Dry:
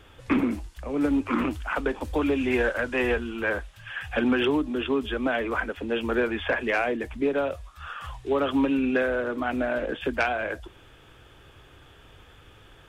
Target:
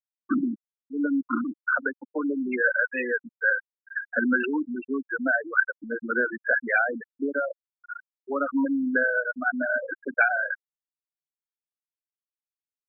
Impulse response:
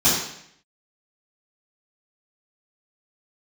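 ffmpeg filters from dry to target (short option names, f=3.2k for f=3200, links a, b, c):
-af "highpass=f=120:w=0.5412,highpass=f=120:w=1.3066,equalizer=f=150:t=q:w=4:g=-7,equalizer=f=400:t=q:w=4:g=-7,equalizer=f=1.5k:t=q:w=4:g=9,lowpass=f=3.3k:w=0.5412,lowpass=f=3.3k:w=1.3066,afftfilt=real='re*gte(hypot(re,im),0.2)':imag='im*gte(hypot(re,im),0.2)':win_size=1024:overlap=0.75"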